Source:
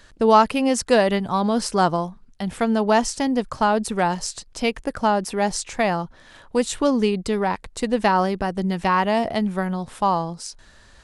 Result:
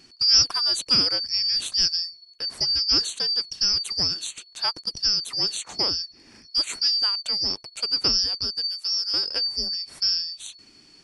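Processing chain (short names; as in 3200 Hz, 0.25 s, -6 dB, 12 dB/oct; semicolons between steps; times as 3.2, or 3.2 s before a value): four-band scrambler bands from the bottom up 2341; 8.67–9.14 differentiator; gain -3.5 dB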